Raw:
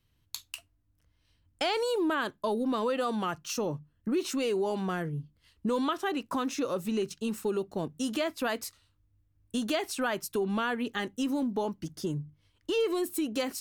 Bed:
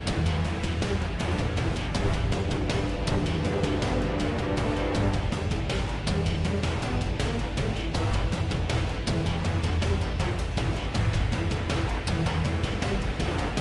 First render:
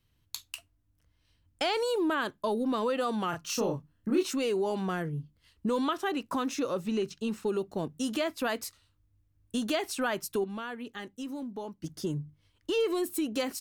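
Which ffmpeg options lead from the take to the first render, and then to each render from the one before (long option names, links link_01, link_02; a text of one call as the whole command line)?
ffmpeg -i in.wav -filter_complex "[0:a]asplit=3[link_01][link_02][link_03];[link_01]afade=type=out:start_time=3.32:duration=0.02[link_04];[link_02]asplit=2[link_05][link_06];[link_06]adelay=30,volume=-2.5dB[link_07];[link_05][link_07]amix=inputs=2:normalize=0,afade=type=in:start_time=3.32:duration=0.02,afade=type=out:start_time=4.22:duration=0.02[link_08];[link_03]afade=type=in:start_time=4.22:duration=0.02[link_09];[link_04][link_08][link_09]amix=inputs=3:normalize=0,asettb=1/sr,asplit=3[link_10][link_11][link_12];[link_10]atrim=end=6.694[link_13];[link_11]atrim=start=6.69:end=7.48,asetpts=PTS-STARTPTS,afade=type=in:duration=0.004:curve=qsin,afade=type=out:start_time=0.786:duration=0.004:curve=qsin,acrossover=split=6200[link_14][link_15];[link_15]acompressor=threshold=-58dB:ratio=4:attack=1:release=60[link_16];[link_14][link_16]amix=inputs=2:normalize=0[link_17];[link_12]atrim=start=7.476[link_18];[link_13][link_17]acrossfade=duration=0.004:curve1=hsin:curve2=qsin[link_19];[link_19][link_18]acrossfade=duration=0.004:curve1=qsin:curve2=hsin,asplit=3[link_20][link_21][link_22];[link_20]atrim=end=10.442[link_23];[link_21]atrim=start=10.438:end=11.842,asetpts=PTS-STARTPTS,volume=-8dB[link_24];[link_22]atrim=start=11.838[link_25];[link_23][link_24]acrossfade=duration=0.004:curve1=hsin:curve2=hsin[link_26];[link_26][link_25]acrossfade=duration=0.004:curve1=hsin:curve2=hsin" out.wav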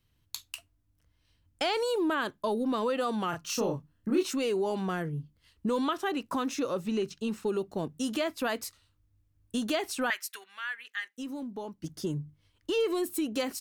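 ffmpeg -i in.wav -filter_complex "[0:a]asettb=1/sr,asplit=3[link_01][link_02][link_03];[link_01]atrim=end=10.104[link_04];[link_02]atrim=start=10.1:end=11.18,asetpts=PTS-STARTPTS,afade=type=in:duration=0.004:curve=qsin,afade=type=out:start_time=1.076:duration=0.004:curve=qsin,highpass=frequency=1800:width_type=q:width=3.3[link_05];[link_03]atrim=start=11.176[link_06];[link_04][link_05]acrossfade=duration=0.004:curve1=hsin:curve2=qsin[link_07];[link_07][link_06]acrossfade=duration=0.004:curve1=qsin:curve2=hsin" out.wav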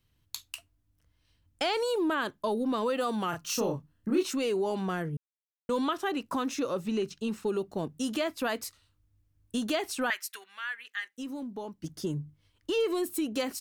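ffmpeg -i in.wav -filter_complex "[0:a]asettb=1/sr,asplit=3[link_01][link_02][link_03];[link_01]atrim=end=2.864[link_04];[link_02]atrim=start=2.86:end=3.72,asetpts=PTS-STARTPTS,afade=type=in:duration=0.004:curve=qsin,afade=type=out:start_time=0.856:duration=0.004:curve=qsin,highshelf=frequency=9500:gain=6[link_05];[link_03]atrim=start=3.716[link_06];[link_04][link_05]acrossfade=duration=0.004:curve1=hsin:curve2=qsin[link_07];[link_07][link_06]acrossfade=duration=0.004:curve1=qsin:curve2=hsin,asplit=3[link_08][link_09][link_10];[link_08]atrim=end=5.17,asetpts=PTS-STARTPTS,afade=type=out:start_time=5.166:duration=0.004:curve=hsin[link_11];[link_09]atrim=start=5.17:end=5.69,asetpts=PTS-STARTPTS,volume=0[link_12];[link_10]atrim=start=5.69,asetpts=PTS-STARTPTS,afade=type=in:duration=0.004:curve=hsin[link_13];[link_11][link_12][link_13]concat=n=3:v=0:a=1" out.wav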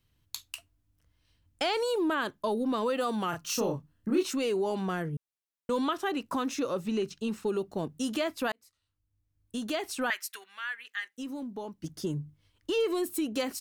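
ffmpeg -i in.wav -filter_complex "[0:a]asplit=2[link_01][link_02];[link_01]atrim=end=8.52,asetpts=PTS-STARTPTS,afade=type=out:start_time=8.516:duration=0.004:curve=hsin[link_03];[link_02]atrim=start=8.52,asetpts=PTS-STARTPTS,afade=type=in:duration=1.64[link_04];[link_03][link_04]concat=n=2:v=0:a=1" out.wav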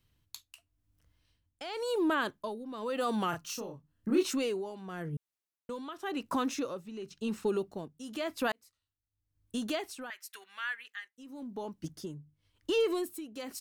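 ffmpeg -i in.wav -af "tremolo=f=0.94:d=0.79" out.wav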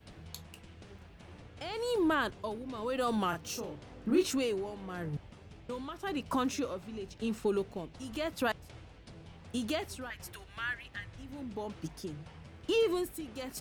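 ffmpeg -i in.wav -i bed.wav -filter_complex "[1:a]volume=-24.5dB[link_01];[0:a][link_01]amix=inputs=2:normalize=0" out.wav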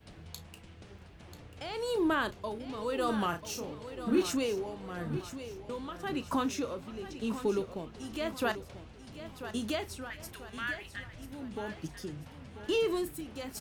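ffmpeg -i in.wav -filter_complex "[0:a]asplit=2[link_01][link_02];[link_02]adelay=34,volume=-14dB[link_03];[link_01][link_03]amix=inputs=2:normalize=0,aecho=1:1:989|1978|2967|3956:0.266|0.112|0.0469|0.0197" out.wav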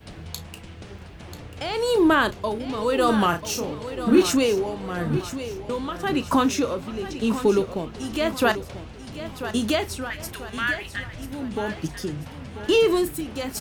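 ffmpeg -i in.wav -af "volume=11dB" out.wav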